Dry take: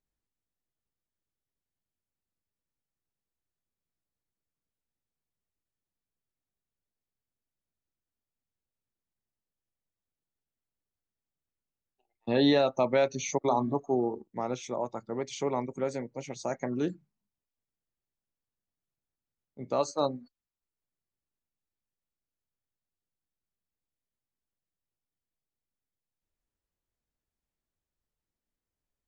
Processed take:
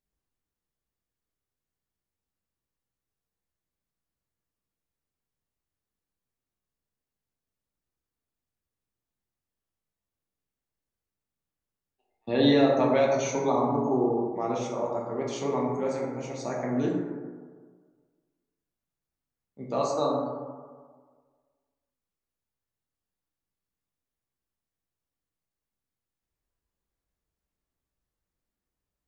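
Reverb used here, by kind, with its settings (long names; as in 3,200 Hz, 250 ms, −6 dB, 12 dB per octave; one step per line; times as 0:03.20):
dense smooth reverb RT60 1.6 s, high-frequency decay 0.3×, DRR −3 dB
level −2 dB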